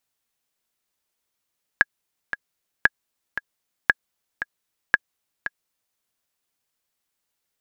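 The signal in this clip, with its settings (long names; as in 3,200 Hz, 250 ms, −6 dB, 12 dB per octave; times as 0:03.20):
click track 115 BPM, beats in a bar 2, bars 4, 1,660 Hz, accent 12 dB −1 dBFS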